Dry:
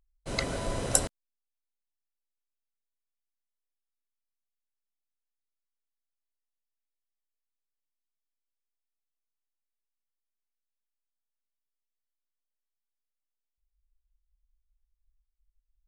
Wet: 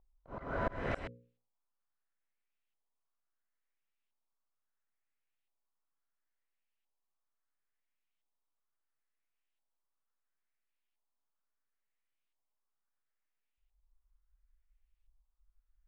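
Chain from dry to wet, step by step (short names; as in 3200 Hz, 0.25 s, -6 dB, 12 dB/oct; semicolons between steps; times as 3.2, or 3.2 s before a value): notches 60/120/180/240/300/360/420/480/540 Hz; auto swell 0.328 s; LFO low-pass saw up 0.73 Hz 840–3000 Hz; gain +2 dB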